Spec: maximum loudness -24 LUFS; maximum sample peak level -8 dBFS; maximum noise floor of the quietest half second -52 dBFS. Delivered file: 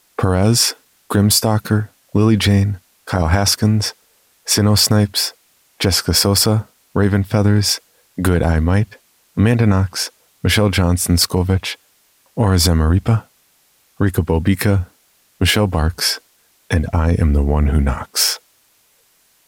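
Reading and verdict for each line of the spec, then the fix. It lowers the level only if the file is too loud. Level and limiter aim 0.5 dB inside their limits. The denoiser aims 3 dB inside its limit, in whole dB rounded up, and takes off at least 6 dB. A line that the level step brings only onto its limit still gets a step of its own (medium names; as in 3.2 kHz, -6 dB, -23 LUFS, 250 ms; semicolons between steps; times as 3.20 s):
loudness -16.5 LUFS: fail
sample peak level -3.0 dBFS: fail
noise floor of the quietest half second -57 dBFS: pass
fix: trim -8 dB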